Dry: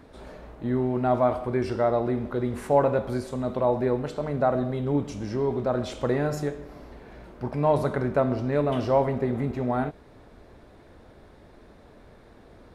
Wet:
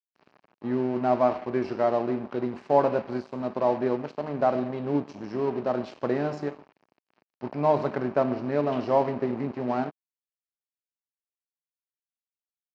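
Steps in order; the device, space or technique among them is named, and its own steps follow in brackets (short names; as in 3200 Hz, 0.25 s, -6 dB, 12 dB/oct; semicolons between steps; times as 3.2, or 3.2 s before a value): blown loudspeaker (crossover distortion -37.5 dBFS; speaker cabinet 190–4700 Hz, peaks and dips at 490 Hz -4 dB, 1400 Hz -4 dB, 2000 Hz -4 dB, 3500 Hz -9 dB); gain +2 dB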